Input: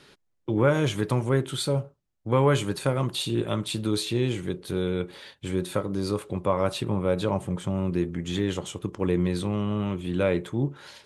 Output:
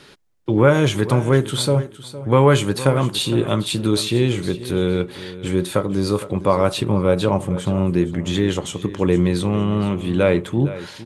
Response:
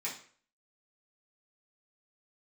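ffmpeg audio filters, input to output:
-af "aecho=1:1:461|922:0.178|0.0391,volume=7.5dB"

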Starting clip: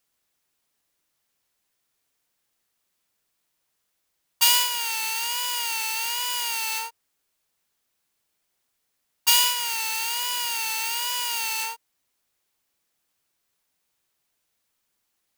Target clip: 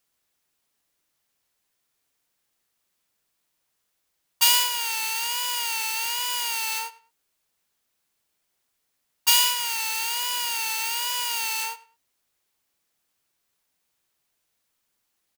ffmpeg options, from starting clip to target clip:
-filter_complex "[0:a]asettb=1/sr,asplit=3[a][b][c];[a]atrim=end=9.314[d];[b]atrim=start=9.31:end=9.9,asetpts=PTS-STARTPTS,afade=t=in:d=0.004:c=qsin,afade=t=out:st=0.586:d=0.004:c=qsin,highpass=f=330:p=1[e];[c]atrim=start=9.896[f];[d][e]acrossfade=d=0.004:c1=hsin:c2=qsin[g];[g][f]acrossfade=d=0.004:c1=qsin:c2=hsin,asplit=2[h][i];[i]adelay=102,lowpass=f=3.4k:p=1,volume=-17.5dB,asplit=2[j][k];[k]adelay=102,lowpass=f=3.4k:p=1,volume=0.26[l];[h][j][l]amix=inputs=3:normalize=0"

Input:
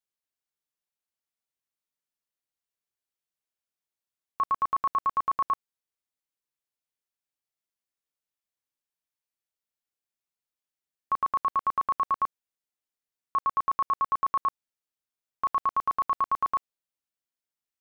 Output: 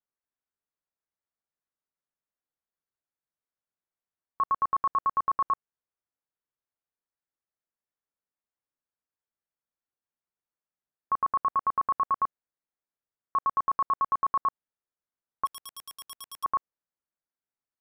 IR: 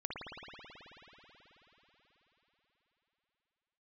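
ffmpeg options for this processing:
-filter_complex "[0:a]lowpass=f=1.8k:w=0.5412,lowpass=f=1.8k:w=1.3066,asplit=3[a][b][c];[a]afade=t=out:st=15.45:d=0.02[d];[b]aeval=exprs='0.0141*(abs(mod(val(0)/0.0141+3,4)-2)-1)':c=same,afade=t=in:st=15.45:d=0.02,afade=t=out:st=16.43:d=0.02[e];[c]afade=t=in:st=16.43:d=0.02[f];[d][e][f]amix=inputs=3:normalize=0"

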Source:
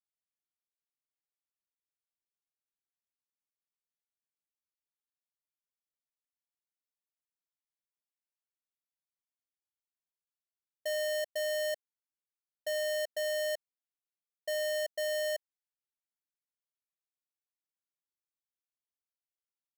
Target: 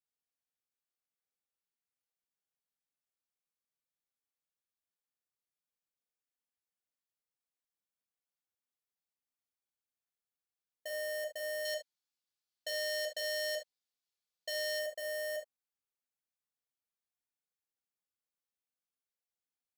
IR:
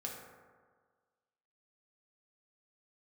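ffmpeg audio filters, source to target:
-filter_complex "[0:a]asettb=1/sr,asplit=3[a][b][c];[a]atrim=end=11.654[d];[b]atrim=start=11.65:end=14.79,asetpts=PTS-STARTPTS,afade=t=in:d=0.004:c=qsin,afade=t=out:st=3.136:d=0.004:c=qsin,equalizer=f=4.4k:w=0.95:g=12[e];[c]atrim=start=14.786[f];[d][e]acrossfade=d=0.004:c1=hsin:c2=qsin[g];[g][f]acrossfade=d=0.004:c1=qsin:c2=hsin[h];[1:a]atrim=start_sample=2205,atrim=end_sample=3528[i];[h][i]afir=irnorm=-1:irlink=0"

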